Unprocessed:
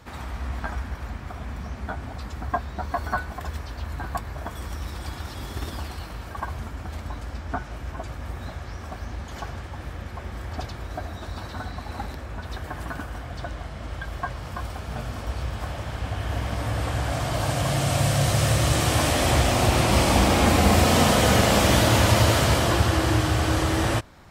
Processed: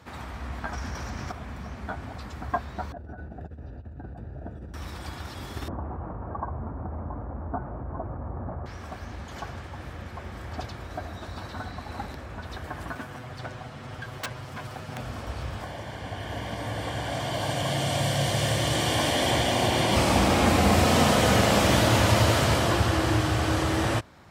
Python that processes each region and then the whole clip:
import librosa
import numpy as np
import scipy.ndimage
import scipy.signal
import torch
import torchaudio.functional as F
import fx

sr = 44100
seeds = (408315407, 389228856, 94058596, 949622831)

y = fx.chain(x, sr, fx.peak_eq(hz=5700.0, db=13.0, octaves=0.46),
    fx.env_flatten(amount_pct=50), at=(0.73, 1.32))
y = fx.chain(y, sr, fx.moving_average(points=41),
    fx.over_compress(threshold_db=-34.0, ratio=-0.5), at=(2.92, 4.74))
y = fx.chain(y, sr, fx.lowpass(hz=1100.0, slope=24),
    fx.env_flatten(amount_pct=50), at=(5.68, 8.66))
y = fx.chain(y, sr, fx.lower_of_two(delay_ms=8.0),
    fx.overflow_wrap(gain_db=22.0), at=(12.95, 15.01))
y = fx.chain(y, sr, fx.notch_comb(f0_hz=1300.0),
    fx.dynamic_eq(hz=3200.0, q=2.3, threshold_db=-45.0, ratio=4.0, max_db=5), at=(15.62, 19.96))
y = scipy.signal.sosfilt(scipy.signal.butter(2, 74.0, 'highpass', fs=sr, output='sos'), y)
y = fx.high_shelf(y, sr, hz=7500.0, db=-4.5)
y = y * librosa.db_to_amplitude(-1.5)